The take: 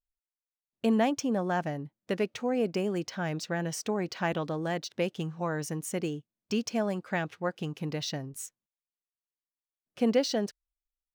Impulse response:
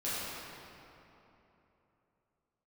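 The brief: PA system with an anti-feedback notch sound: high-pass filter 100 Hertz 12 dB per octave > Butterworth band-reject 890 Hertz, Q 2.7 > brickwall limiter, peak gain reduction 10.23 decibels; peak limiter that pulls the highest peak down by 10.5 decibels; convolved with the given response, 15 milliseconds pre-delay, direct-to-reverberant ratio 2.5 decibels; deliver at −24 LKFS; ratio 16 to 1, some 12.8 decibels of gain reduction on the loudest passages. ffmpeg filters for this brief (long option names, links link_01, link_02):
-filter_complex "[0:a]acompressor=threshold=-33dB:ratio=16,alimiter=level_in=9dB:limit=-24dB:level=0:latency=1,volume=-9dB,asplit=2[link_01][link_02];[1:a]atrim=start_sample=2205,adelay=15[link_03];[link_02][link_03]afir=irnorm=-1:irlink=0,volume=-9dB[link_04];[link_01][link_04]amix=inputs=2:normalize=0,highpass=100,asuperstop=centerf=890:order=8:qfactor=2.7,volume=23dB,alimiter=limit=-15.5dB:level=0:latency=1"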